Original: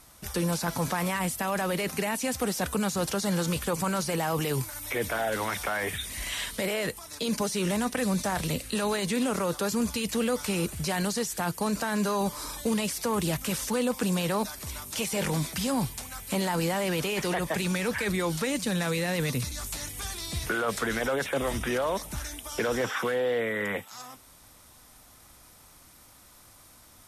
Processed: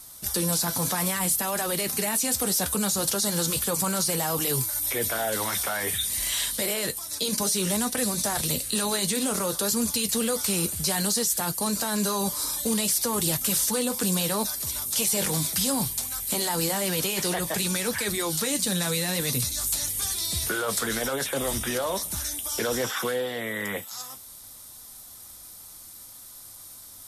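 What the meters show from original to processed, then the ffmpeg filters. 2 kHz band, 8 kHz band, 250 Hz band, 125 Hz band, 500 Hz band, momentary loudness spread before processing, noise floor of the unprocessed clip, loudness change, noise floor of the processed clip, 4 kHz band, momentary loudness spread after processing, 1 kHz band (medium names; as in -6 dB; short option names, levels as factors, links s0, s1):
-0.5 dB, +10.0 dB, -0.5 dB, -1.0 dB, -1.0 dB, 6 LU, -54 dBFS, +4.0 dB, -45 dBFS, +6.0 dB, 14 LU, -0.5 dB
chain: -af "flanger=delay=7.9:depth=3:regen=-57:speed=0.61:shape=sinusoidal,aexciter=amount=1.9:drive=8.3:freq=3500,volume=1.5"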